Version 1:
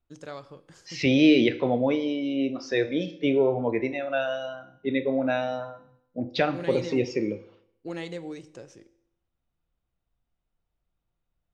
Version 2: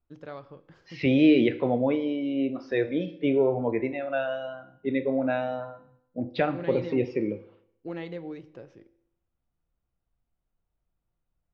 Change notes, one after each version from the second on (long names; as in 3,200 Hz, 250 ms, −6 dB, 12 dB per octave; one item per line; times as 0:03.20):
master: add high-frequency loss of the air 310 metres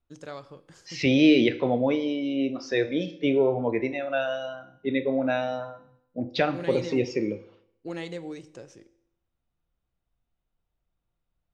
master: remove high-frequency loss of the air 310 metres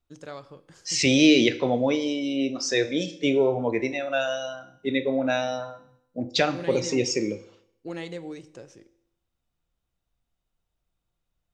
second voice: remove high-frequency loss of the air 260 metres